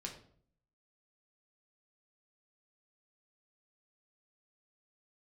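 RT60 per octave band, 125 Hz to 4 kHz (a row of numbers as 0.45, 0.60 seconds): 0.85, 0.75, 0.60, 0.50, 0.40, 0.40 seconds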